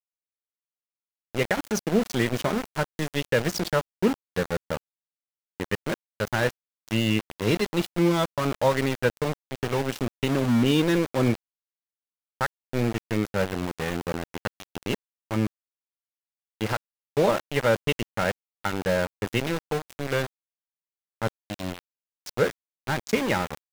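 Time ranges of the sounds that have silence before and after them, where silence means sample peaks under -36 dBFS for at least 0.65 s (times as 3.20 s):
1.35–4.77 s
5.60–11.35 s
12.41–15.47 s
16.61–20.26 s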